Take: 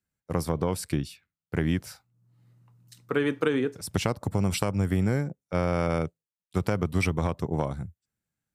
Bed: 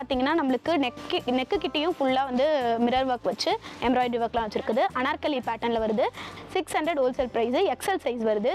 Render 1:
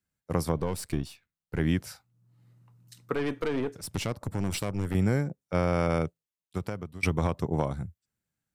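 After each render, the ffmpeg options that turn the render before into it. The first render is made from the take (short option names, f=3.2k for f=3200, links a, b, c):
-filter_complex "[0:a]asettb=1/sr,asplit=3[a][b][c];[a]atrim=end=0.584[d];[b]atrim=start=0.58:end=1.6,asetpts=PTS-STARTPTS,afade=t=in:d=0.004:c=qsin,afade=t=out:st=1.016:d=0.004:c=qsin,aeval=exprs='if(lt(val(0),0),0.447*val(0),val(0))':c=same[e];[c]atrim=start=1.596[f];[d][e]acrossfade=d=0.004:c1=hsin:c2=qsin[g];[g][f]acrossfade=d=0.004:c1=qsin:c2=hsin,asettb=1/sr,asplit=3[h][i][j];[h]atrim=end=3.134[k];[i]atrim=start=3.13:end=4.95,asetpts=PTS-STARTPTS,afade=t=in:d=0.004:c=qsin,afade=t=out:st=1.816:d=0.004:c=qsin,aeval=exprs='(tanh(15.8*val(0)+0.5)-tanh(0.5))/15.8':c=same[l];[j]atrim=start=4.946[m];[k][l]acrossfade=d=0.004:c1=hsin:c2=qsin[n];[n][m]acrossfade=d=0.004:c1=qsin:c2=hsin,asplit=2[o][p];[o]atrim=end=7.03,asetpts=PTS-STARTPTS,afade=t=out:st=6.04:d=0.99:silence=0.0944061[q];[p]atrim=start=7.03,asetpts=PTS-STARTPTS,afade=t=in:d=0.004:c=hsin:silence=0.0944061[r];[q][r]concat=n=2:v=0:a=1"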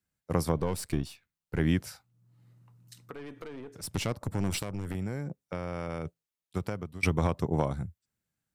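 -filter_complex "[0:a]asettb=1/sr,asplit=3[a][b][c];[a]atrim=end=1.894[d];[b]atrim=start=1.89:end=3.77,asetpts=PTS-STARTPTS,afade=t=in:d=0.004:c=qsin,afade=t=out:st=1.876:d=0.004:c=qsin,acompressor=threshold=-41dB:ratio=4:attack=3.2:release=140:knee=1:detection=peak[e];[c]atrim=start=3.766[f];[d][e]acrossfade=d=0.004:c1=hsin:c2=qsin[g];[g][f]acrossfade=d=0.004:c1=qsin:c2=hsin,asettb=1/sr,asplit=3[h][i][j];[h]atrim=end=4.604[k];[i]atrim=start=4.6:end=6.06,asetpts=PTS-STARTPTS,afade=t=in:d=0.004:c=qsin,afade=t=out:st=1.456:d=0.004:c=qsin,acompressor=threshold=-30dB:ratio=6:attack=3.2:release=140:knee=1:detection=peak[l];[j]atrim=start=6.056[m];[k][l]acrossfade=d=0.004:c1=hsin:c2=qsin[n];[n][m]acrossfade=d=0.004:c1=qsin:c2=hsin"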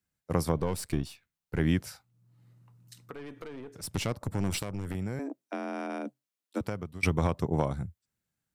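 -filter_complex "[0:a]asettb=1/sr,asplit=3[a][b][c];[a]atrim=end=5.194[d];[b]atrim=start=5.19:end=6.61,asetpts=PTS-STARTPTS,afade=t=in:d=0.004:c=qsin,afade=t=out:st=1.416:d=0.004:c=qsin,afreqshift=130[e];[c]atrim=start=6.606[f];[d][e]acrossfade=d=0.004:c1=hsin:c2=qsin[g];[g][f]acrossfade=d=0.004:c1=qsin:c2=hsin"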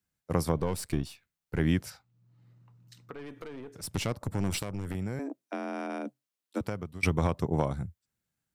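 -filter_complex "[0:a]asettb=1/sr,asplit=3[a][b][c];[a]atrim=end=1.904[d];[b]atrim=start=1.9:end=3.19,asetpts=PTS-STARTPTS,afade=t=in:d=0.004:c=qsin,afade=t=out:st=1.286:d=0.004:c=qsin,equalizer=f=11k:w=0.96:g=-12.5[e];[c]atrim=start=3.186[f];[d][e]acrossfade=d=0.004:c1=hsin:c2=qsin[g];[g][f]acrossfade=d=0.004:c1=qsin:c2=hsin"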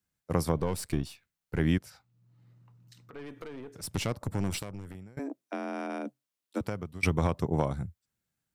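-filter_complex "[0:a]asettb=1/sr,asplit=3[a][b][c];[a]atrim=end=1.784[d];[b]atrim=start=1.78:end=3.13,asetpts=PTS-STARTPTS,afade=t=in:d=0.004:c=qsin,afade=t=out:st=1.346:d=0.004:c=qsin,acompressor=threshold=-50dB:ratio=2.5:attack=3.2:release=140:knee=1:detection=peak[e];[c]atrim=start=3.126[f];[d][e]acrossfade=d=0.004:c1=hsin:c2=qsin[g];[g][f]acrossfade=d=0.004:c1=qsin:c2=hsin,asplit=2[h][i];[h]atrim=end=5.17,asetpts=PTS-STARTPTS,afade=t=out:st=4.37:d=0.8:silence=0.0630957[j];[i]atrim=start=5.17,asetpts=PTS-STARTPTS,afade=t=in:d=0.004:c=hsin:silence=0.0630957[k];[j][k]concat=n=2:v=0:a=1"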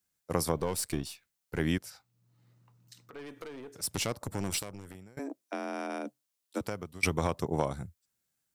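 -af "bass=f=250:g=-6,treble=f=4k:g=6"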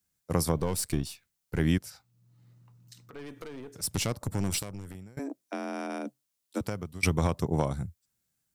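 -af "bass=f=250:g=7,treble=f=4k:g=2"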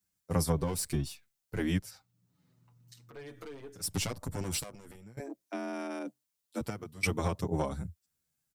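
-filter_complex "[0:a]asplit=2[a][b];[b]adelay=7.1,afreqshift=-0.54[c];[a][c]amix=inputs=2:normalize=1"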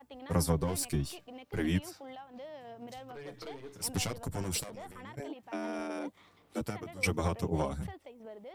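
-filter_complex "[1:a]volume=-23dB[a];[0:a][a]amix=inputs=2:normalize=0"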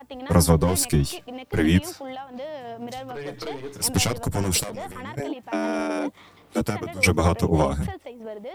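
-af "volume=11.5dB"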